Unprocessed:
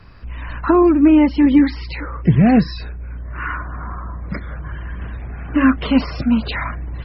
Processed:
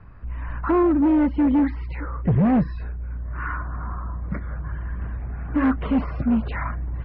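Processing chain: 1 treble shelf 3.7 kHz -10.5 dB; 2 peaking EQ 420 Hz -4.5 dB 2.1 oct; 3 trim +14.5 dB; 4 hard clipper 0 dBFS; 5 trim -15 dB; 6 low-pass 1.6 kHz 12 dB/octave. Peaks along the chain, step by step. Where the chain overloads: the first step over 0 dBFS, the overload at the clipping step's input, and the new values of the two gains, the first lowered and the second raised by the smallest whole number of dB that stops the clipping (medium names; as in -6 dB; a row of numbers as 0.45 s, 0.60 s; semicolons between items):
-2.5 dBFS, -4.5 dBFS, +10.0 dBFS, 0.0 dBFS, -15.0 dBFS, -14.5 dBFS; step 3, 10.0 dB; step 3 +4.5 dB, step 5 -5 dB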